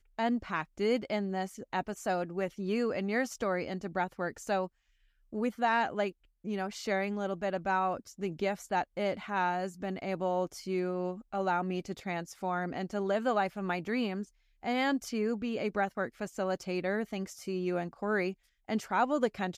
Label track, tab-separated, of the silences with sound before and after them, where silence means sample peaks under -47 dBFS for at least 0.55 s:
4.670000	5.330000	silence